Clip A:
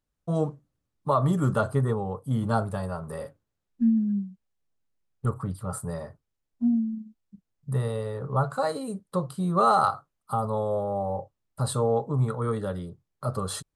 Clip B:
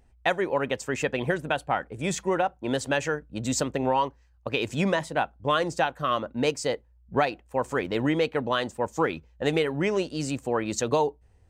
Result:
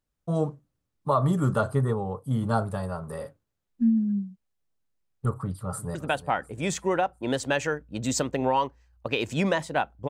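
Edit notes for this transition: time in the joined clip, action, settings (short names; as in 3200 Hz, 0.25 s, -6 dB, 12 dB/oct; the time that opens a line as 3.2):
clip A
5.41–5.95 echo throw 0.35 s, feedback 45%, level -15 dB
5.95 switch to clip B from 1.36 s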